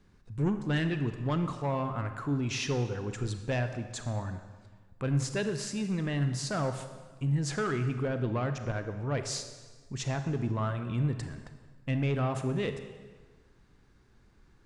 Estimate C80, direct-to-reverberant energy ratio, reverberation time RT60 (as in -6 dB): 10.5 dB, 8.0 dB, 1.4 s